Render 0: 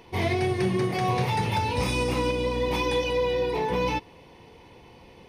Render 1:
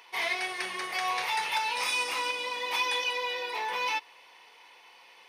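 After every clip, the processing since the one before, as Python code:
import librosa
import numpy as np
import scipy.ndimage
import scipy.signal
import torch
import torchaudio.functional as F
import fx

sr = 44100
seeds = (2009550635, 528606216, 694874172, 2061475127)

y = scipy.signal.sosfilt(scipy.signal.cheby1(2, 1.0, 1300.0, 'highpass', fs=sr, output='sos'), x)
y = y * 10.0 ** (3.0 / 20.0)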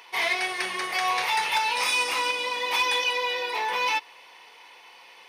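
y = np.clip(10.0 ** (21.5 / 20.0) * x, -1.0, 1.0) / 10.0 ** (21.5 / 20.0)
y = y * 10.0 ** (5.0 / 20.0)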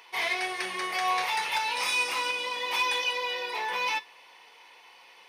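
y = fx.comb_fb(x, sr, f0_hz=92.0, decay_s=0.23, harmonics='all', damping=0.0, mix_pct=50)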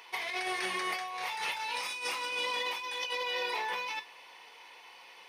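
y = fx.over_compress(x, sr, threshold_db=-33.0, ratio=-1.0)
y = y * 10.0 ** (-2.5 / 20.0)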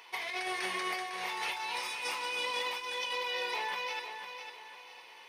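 y = fx.echo_feedback(x, sr, ms=503, feedback_pct=35, wet_db=-8.0)
y = y * 10.0 ** (-1.5 / 20.0)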